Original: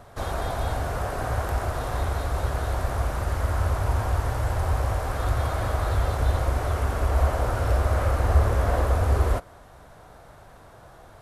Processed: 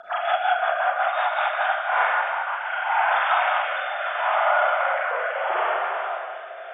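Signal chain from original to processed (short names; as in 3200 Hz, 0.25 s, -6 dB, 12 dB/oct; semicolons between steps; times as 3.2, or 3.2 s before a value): sine-wave speech; HPF 940 Hz 12 dB/oct; compressor 10:1, threshold -31 dBFS, peak gain reduction 11.5 dB; diffused feedback echo 0.553 s, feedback 68%, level -11.5 dB; time stretch by phase-locked vocoder 0.6×; Schroeder reverb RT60 1.5 s, combs from 31 ms, DRR -7 dB; rotary speaker horn 5.5 Hz, later 0.75 Hz, at 1.25; gain +8.5 dB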